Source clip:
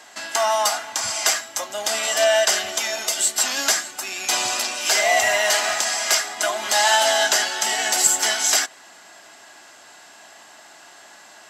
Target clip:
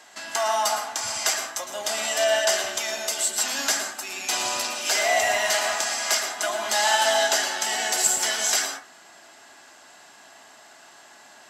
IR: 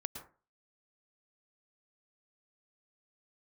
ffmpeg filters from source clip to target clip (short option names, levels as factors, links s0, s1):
-filter_complex "[1:a]atrim=start_sample=2205[s0];[0:a][s0]afir=irnorm=-1:irlink=0,volume=0.794"